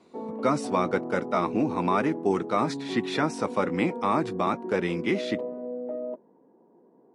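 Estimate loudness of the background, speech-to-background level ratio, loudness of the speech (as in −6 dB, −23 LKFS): −35.0 LKFS, 7.5 dB, −27.5 LKFS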